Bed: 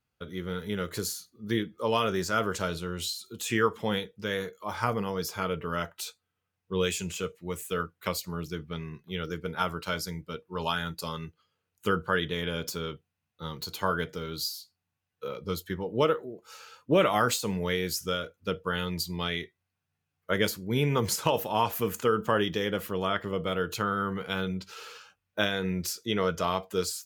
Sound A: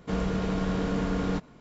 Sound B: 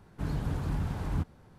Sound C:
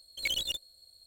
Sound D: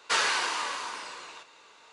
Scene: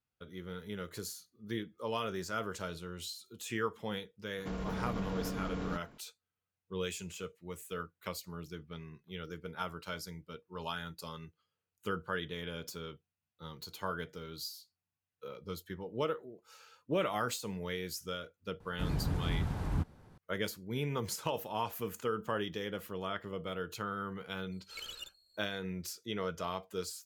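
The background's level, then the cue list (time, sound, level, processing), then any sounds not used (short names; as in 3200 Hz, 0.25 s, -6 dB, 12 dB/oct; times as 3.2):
bed -9.5 dB
4.38 add A -6 dB + limiter -23.5 dBFS
18.6 add B -2 dB
24.52 add C -13.5 dB + ripple EQ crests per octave 1.4, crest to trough 7 dB
not used: D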